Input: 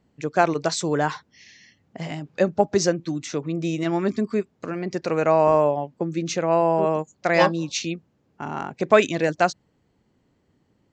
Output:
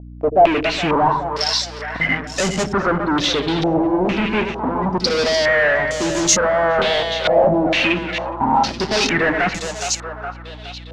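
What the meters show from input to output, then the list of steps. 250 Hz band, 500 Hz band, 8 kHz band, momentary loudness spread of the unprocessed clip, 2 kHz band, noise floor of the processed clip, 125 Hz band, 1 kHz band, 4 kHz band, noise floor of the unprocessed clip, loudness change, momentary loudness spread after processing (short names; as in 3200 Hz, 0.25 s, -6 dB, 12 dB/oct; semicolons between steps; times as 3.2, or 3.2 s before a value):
+5.0 dB, +3.5 dB, +11.5 dB, 14 LU, +10.0 dB, -34 dBFS, +3.0 dB, +6.0 dB, +13.5 dB, -67 dBFS, +5.0 dB, 8 LU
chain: spectral noise reduction 16 dB; bell 1100 Hz -8.5 dB 0.53 oct; reverse; upward compressor, threshold -32 dBFS; reverse; fuzz box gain 42 dB, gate -44 dBFS; split-band echo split 450 Hz, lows 85 ms, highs 0.416 s, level -6 dB; hum 60 Hz, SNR 16 dB; wavefolder -10.5 dBFS; stepped low-pass 2.2 Hz 700–6900 Hz; gain -4.5 dB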